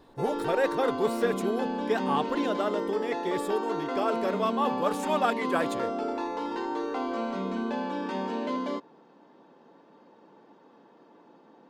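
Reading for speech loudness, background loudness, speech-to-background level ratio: -30.0 LUFS, -32.0 LUFS, 2.0 dB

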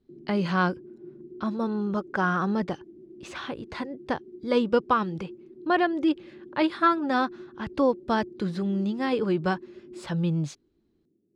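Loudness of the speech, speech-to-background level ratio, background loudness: -27.0 LUFS, 19.0 dB, -46.0 LUFS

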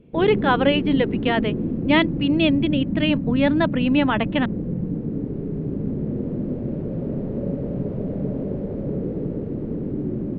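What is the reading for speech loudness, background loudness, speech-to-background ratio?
-21.5 LUFS, -26.5 LUFS, 5.0 dB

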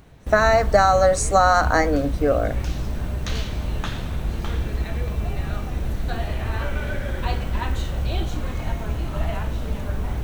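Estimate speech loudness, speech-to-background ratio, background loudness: -19.0 LUFS, 9.0 dB, -28.0 LUFS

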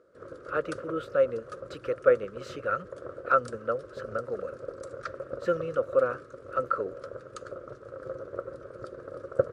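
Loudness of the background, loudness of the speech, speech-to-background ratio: -41.0 LUFS, -30.0 LUFS, 11.0 dB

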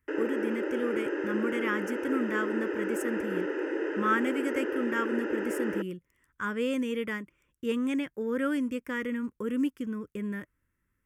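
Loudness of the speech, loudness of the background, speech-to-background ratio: -32.5 LUFS, -32.5 LUFS, 0.0 dB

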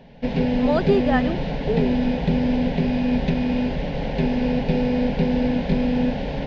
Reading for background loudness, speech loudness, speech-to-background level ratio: -22.5 LUFS, -25.5 LUFS, -3.0 dB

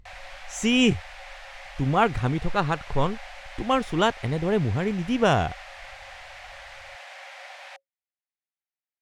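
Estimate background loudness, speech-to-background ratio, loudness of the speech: -42.0 LUFS, 17.5 dB, -24.5 LUFS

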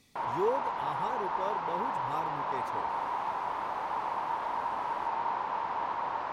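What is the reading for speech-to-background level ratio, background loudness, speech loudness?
-4.5 dB, -33.5 LUFS, -38.0 LUFS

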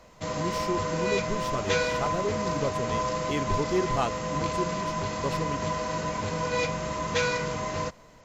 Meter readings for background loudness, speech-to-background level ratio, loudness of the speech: -29.5 LUFS, -4.0 dB, -33.5 LUFS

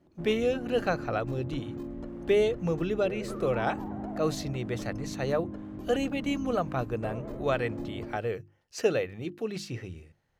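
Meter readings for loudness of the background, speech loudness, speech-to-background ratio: -39.0 LUFS, -31.0 LUFS, 8.0 dB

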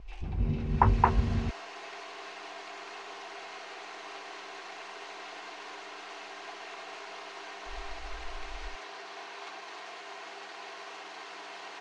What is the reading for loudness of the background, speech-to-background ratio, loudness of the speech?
-43.0 LUFS, 14.0 dB, -29.0 LUFS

